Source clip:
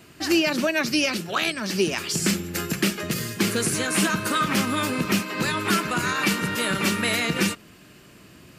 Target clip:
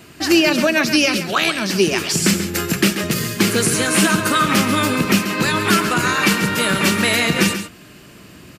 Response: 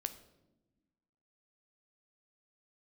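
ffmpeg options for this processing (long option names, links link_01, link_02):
-af "aecho=1:1:136:0.316,volume=6.5dB"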